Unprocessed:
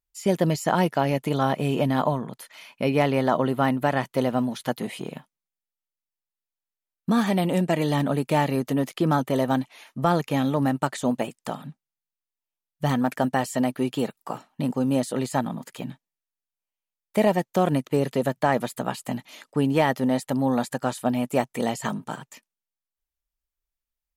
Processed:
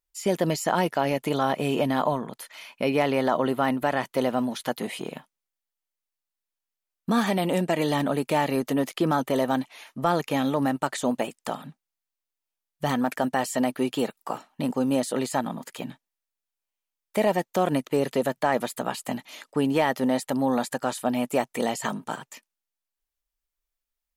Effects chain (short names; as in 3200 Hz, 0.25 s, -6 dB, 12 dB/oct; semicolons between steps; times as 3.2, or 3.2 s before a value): bell 99 Hz -10 dB 1.9 oct; in parallel at +3 dB: limiter -16 dBFS, peak gain reduction 8 dB; on the sum: gain -5.5 dB